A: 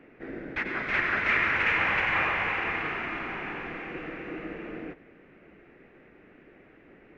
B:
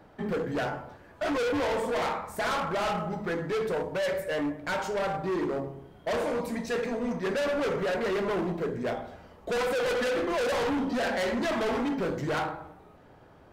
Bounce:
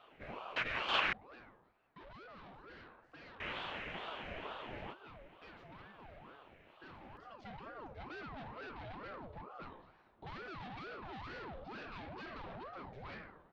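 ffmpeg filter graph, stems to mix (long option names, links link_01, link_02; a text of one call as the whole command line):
ffmpeg -i stem1.wav -i stem2.wav -filter_complex "[0:a]equalizer=frequency=600:width=0.51:gain=-14.5,volume=2.5dB,asplit=3[link_01][link_02][link_03];[link_01]atrim=end=1.13,asetpts=PTS-STARTPTS,afade=type=out:start_time=1.126:duration=0.004:curve=hsin[link_04];[link_02]atrim=start=1.13:end=3.4,asetpts=PTS-STARTPTS,volume=0[link_05];[link_03]atrim=start=3.4,asetpts=PTS-STARTPTS,afade=type=in:duration=0.004:curve=hsin[link_06];[link_04][link_05][link_06]concat=n=3:v=0:a=1[link_07];[1:a]lowpass=frequency=4000:width=0.5412,lowpass=frequency=4000:width=1.3066,acompressor=threshold=-30dB:ratio=6,adelay=750,volume=-13.5dB,afade=type=in:start_time=7:duration=0.63:silence=0.446684[link_08];[link_07][link_08]amix=inputs=2:normalize=0,equalizer=frequency=3500:width_type=o:width=0.21:gain=5.5,aeval=exprs='val(0)*sin(2*PI*620*n/s+620*0.6/2.2*sin(2*PI*2.2*n/s))':channel_layout=same" out.wav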